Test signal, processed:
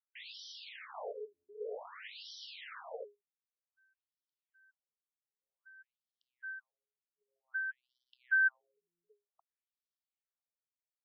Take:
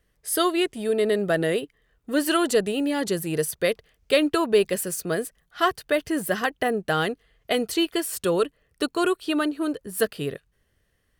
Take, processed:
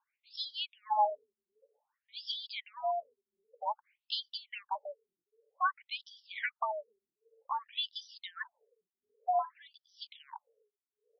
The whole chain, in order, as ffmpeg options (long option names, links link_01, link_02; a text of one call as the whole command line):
ffmpeg -i in.wav -af "aphaser=in_gain=1:out_gain=1:delay=1.5:decay=0.32:speed=0.97:type=triangular,afreqshift=410,afftfilt=real='re*between(b*sr/1024,260*pow(4300/260,0.5+0.5*sin(2*PI*0.53*pts/sr))/1.41,260*pow(4300/260,0.5+0.5*sin(2*PI*0.53*pts/sr))*1.41)':imag='im*between(b*sr/1024,260*pow(4300/260,0.5+0.5*sin(2*PI*0.53*pts/sr))/1.41,260*pow(4300/260,0.5+0.5*sin(2*PI*0.53*pts/sr))*1.41)':win_size=1024:overlap=0.75,volume=-7dB" out.wav